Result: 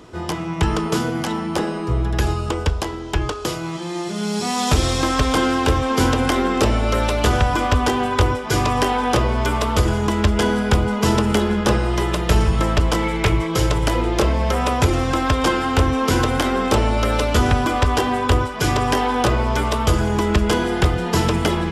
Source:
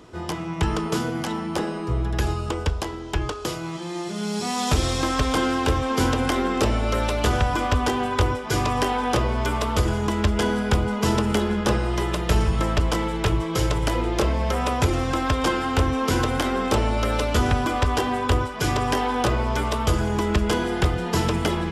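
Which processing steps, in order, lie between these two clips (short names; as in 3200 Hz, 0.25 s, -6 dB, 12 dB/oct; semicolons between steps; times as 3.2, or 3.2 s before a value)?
13.03–13.47 bell 2200 Hz +10.5 dB 0.22 oct; gain +4 dB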